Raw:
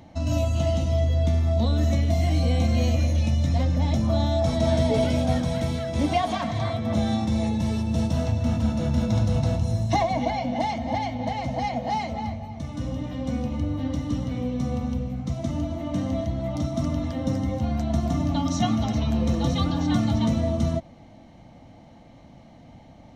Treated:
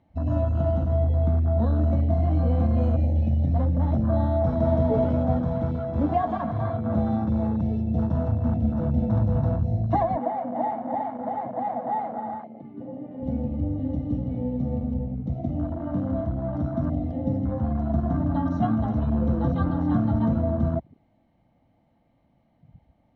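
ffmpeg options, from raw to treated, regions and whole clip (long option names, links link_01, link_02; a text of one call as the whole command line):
ffmpeg -i in.wav -filter_complex "[0:a]asettb=1/sr,asplit=3[link_01][link_02][link_03];[link_01]atrim=end=10.164[link_04];[link_02]atrim=start=10.16:end=13.23,asetpts=PTS-STARTPTS,afade=type=in:duration=0.004:curve=qsin,afade=type=out:start_time=3.066:duration=0.004:curve=qsin,highpass=290,lowpass=2100,aecho=1:1:400:0.398,atrim=end_sample=135387[link_05];[link_03]atrim=start=13.226[link_06];[link_04][link_05]acrossfade=duration=0.004:curve1=hsin:curve2=qsin[link_07];[link_07][link_06]acrossfade=duration=0.004:curve1=qsin:curve2=hsin,lowpass=2900,afwtdn=0.0282" out.wav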